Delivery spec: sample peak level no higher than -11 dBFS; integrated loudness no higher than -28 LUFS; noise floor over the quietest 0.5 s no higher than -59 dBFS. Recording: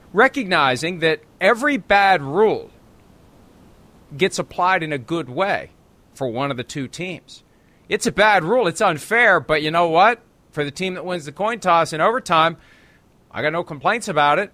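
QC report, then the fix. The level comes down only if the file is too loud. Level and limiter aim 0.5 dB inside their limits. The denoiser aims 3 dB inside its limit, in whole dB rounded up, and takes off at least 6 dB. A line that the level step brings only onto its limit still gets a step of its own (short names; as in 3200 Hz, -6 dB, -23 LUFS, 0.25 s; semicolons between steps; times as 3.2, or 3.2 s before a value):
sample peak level -3.5 dBFS: fail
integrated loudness -18.5 LUFS: fail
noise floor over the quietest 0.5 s -54 dBFS: fail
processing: gain -10 dB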